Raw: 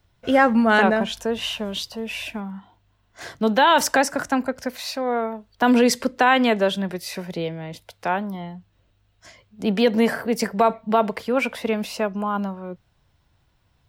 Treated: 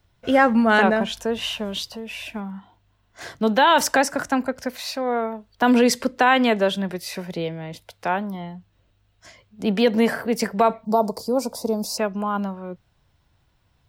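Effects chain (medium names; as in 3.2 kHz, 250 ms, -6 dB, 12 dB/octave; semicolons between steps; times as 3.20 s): 1.92–2.36 s: compression 2:1, threshold -33 dBFS, peak gain reduction 5 dB; 10.85–11.98 s: FFT filter 980 Hz 0 dB, 1.8 kHz -27 dB, 3 kHz -24 dB, 4.7 kHz +8 dB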